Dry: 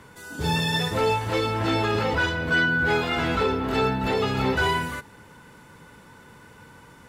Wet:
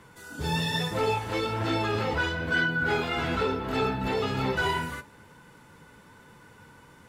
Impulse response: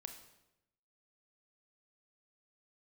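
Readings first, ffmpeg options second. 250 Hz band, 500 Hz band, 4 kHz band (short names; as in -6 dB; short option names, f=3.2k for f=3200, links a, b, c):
-4.0 dB, -4.0 dB, -4.0 dB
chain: -af "flanger=delay=5.7:depth=8.9:regen=-50:speed=1.1:shape=sinusoidal"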